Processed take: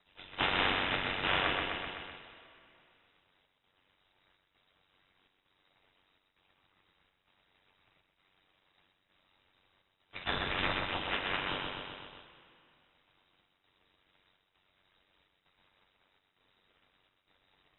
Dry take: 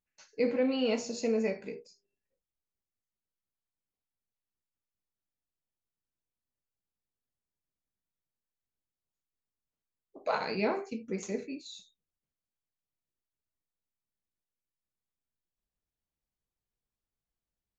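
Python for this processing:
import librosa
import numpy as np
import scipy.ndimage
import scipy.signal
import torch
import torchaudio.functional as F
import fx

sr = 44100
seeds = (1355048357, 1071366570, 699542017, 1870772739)

y = fx.spec_flatten(x, sr, power=0.34)
y = scipy.signal.sosfilt(scipy.signal.butter(2, 150.0, 'highpass', fs=sr, output='sos'), y)
y = fx.spec_gate(y, sr, threshold_db=-10, keep='weak')
y = y * np.sin(2.0 * np.pi * 47.0 * np.arange(len(y)) / sr)
y = fx.formant_shift(y, sr, semitones=4)
y = fx.chopper(y, sr, hz=1.1, depth_pct=65, duty_pct=80)
y = fx.echo_feedback(y, sr, ms=127, feedback_pct=45, wet_db=-6.0)
y = fx.rev_double_slope(y, sr, seeds[0], early_s=0.29, late_s=1.6, knee_db=-20, drr_db=12.5)
y = fx.freq_invert(y, sr, carrier_hz=3800)
y = fx.env_flatten(y, sr, amount_pct=50)
y = F.gain(torch.from_numpy(y), 5.0).numpy()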